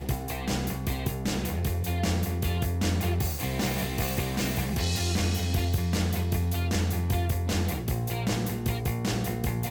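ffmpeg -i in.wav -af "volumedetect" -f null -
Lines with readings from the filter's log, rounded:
mean_volume: -27.6 dB
max_volume: -14.8 dB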